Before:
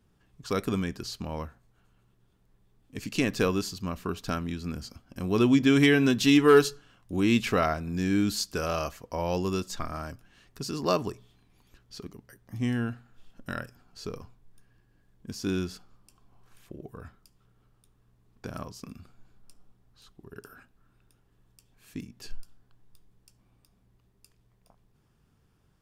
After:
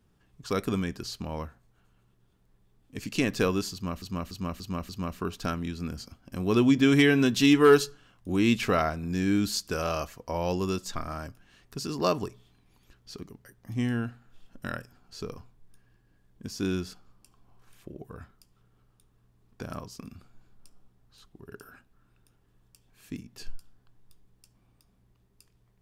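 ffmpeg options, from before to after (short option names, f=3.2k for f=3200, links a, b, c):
-filter_complex "[0:a]asplit=5[a][b][c][d][e];[a]atrim=end=4.022[f];[b]atrim=start=3.728:end=4.022[g];[c]atrim=start=3.728:end=4.022[h];[d]atrim=start=3.728:end=4.022[i];[e]atrim=start=3.728[j];[f][g]acrossfade=d=0.004:c1=hsin:c2=hsin[k];[k][h]acrossfade=d=0.004:c1=hsin:c2=hsin[l];[l][i]acrossfade=d=0.004:c1=hsin:c2=hsin[m];[m][j]acrossfade=d=0.004:c1=hsin:c2=hsin"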